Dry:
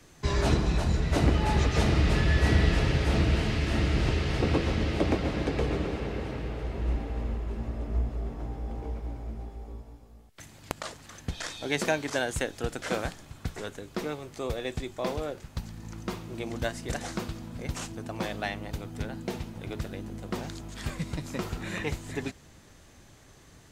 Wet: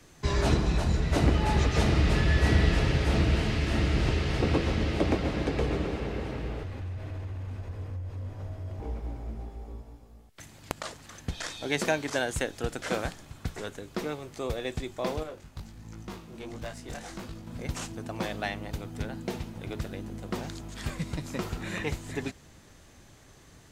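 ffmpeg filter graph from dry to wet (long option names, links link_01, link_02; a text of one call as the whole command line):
ffmpeg -i in.wav -filter_complex "[0:a]asettb=1/sr,asplit=3[link_01][link_02][link_03];[link_01]atrim=end=6.634[link_04];[link_02]atrim=start=6.63:end=8.8,asetpts=PTS-STARTPTS,afade=type=in:duration=0.004:curve=qsin,afade=type=out:start_time=2.166:duration=0.004:curve=qsin,equalizer=frequency=200:width=0.43:gain=-5.5,acompressor=threshold=-32dB:ratio=10:attack=3.2:release=140:knee=1:detection=peak,afreqshift=-150[link_05];[link_03]atrim=start=8.796[link_06];[link_04][link_05]acrossfade=duration=0.004:curve1=hsin:curve2=qsin[link_07];[link_07][link_06]acrossfade=duration=0.004:curve1=qsin:curve2=hsin,asettb=1/sr,asplit=3[link_08][link_09][link_10];[link_08]atrim=end=15.234[link_11];[link_09]atrim=start=15.23:end=17.47,asetpts=PTS-STARTPTS,afade=type=in:duration=0.004:curve=qsin,afade=type=out:start_time=2.236:duration=0.004:curve=qsin,flanger=delay=18.5:depth=4.1:speed=1.4,aeval=exprs='(tanh(39.8*val(0)+0.4)-tanh(0.4))/39.8':channel_layout=same[link_12];[link_10]atrim=start=17.466[link_13];[link_11][link_12]acrossfade=duration=0.004:curve1=hsin:curve2=qsin[link_14];[link_14][link_13]acrossfade=duration=0.004:curve1=qsin:curve2=hsin" out.wav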